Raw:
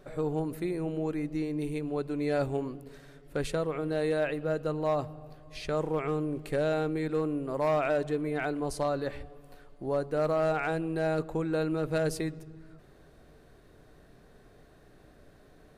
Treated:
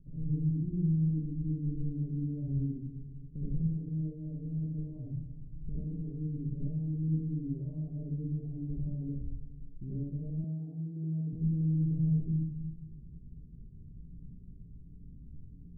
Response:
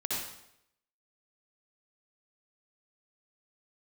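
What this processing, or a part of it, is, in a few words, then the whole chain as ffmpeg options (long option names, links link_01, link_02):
club heard from the street: -filter_complex "[0:a]alimiter=level_in=2dB:limit=-24dB:level=0:latency=1:release=497,volume=-2dB,lowpass=frequency=190:width=0.5412,lowpass=frequency=190:width=1.3066[link_01];[1:a]atrim=start_sample=2205[link_02];[link_01][link_02]afir=irnorm=-1:irlink=0,asettb=1/sr,asplit=3[link_03][link_04][link_05];[link_03]atrim=end=10.444[link_06];[link_04]atrim=start=10.44:end=11.33,asetpts=PTS-STARTPTS,afade=type=in:duration=0.004:curve=qsin,afade=type=out:start_time=0.886:duration=0.004:curve=qsin,highpass=210[link_07];[link_05]atrim=start=11.326[link_08];[link_06][link_07]acrossfade=duration=0.004:curve1=hsin:curve2=qsin[link_09];[link_09][link_08]acrossfade=duration=0.004:curve1=qsin:curve2=hsin,volume=5.5dB"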